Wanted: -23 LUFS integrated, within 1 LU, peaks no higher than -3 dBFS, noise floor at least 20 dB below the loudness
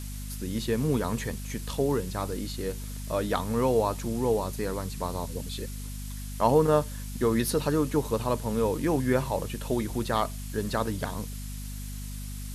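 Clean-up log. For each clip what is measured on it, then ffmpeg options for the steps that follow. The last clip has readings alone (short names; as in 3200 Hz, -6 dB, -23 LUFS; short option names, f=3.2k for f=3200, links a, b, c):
hum 50 Hz; harmonics up to 250 Hz; hum level -34 dBFS; noise floor -37 dBFS; noise floor target -49 dBFS; loudness -29.0 LUFS; peak -9.0 dBFS; loudness target -23.0 LUFS
-> -af "bandreject=f=50:t=h:w=4,bandreject=f=100:t=h:w=4,bandreject=f=150:t=h:w=4,bandreject=f=200:t=h:w=4,bandreject=f=250:t=h:w=4"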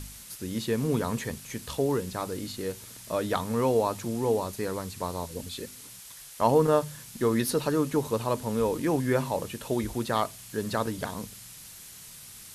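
hum none; noise floor -47 dBFS; noise floor target -49 dBFS
-> -af "afftdn=nr=6:nf=-47"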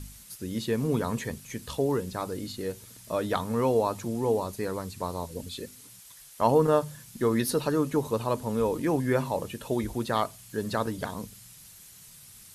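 noise floor -51 dBFS; loudness -29.0 LUFS; peak -9.5 dBFS; loudness target -23.0 LUFS
-> -af "volume=6dB"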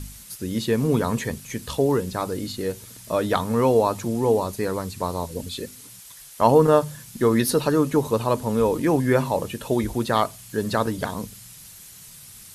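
loudness -23.0 LUFS; peak -3.5 dBFS; noise floor -45 dBFS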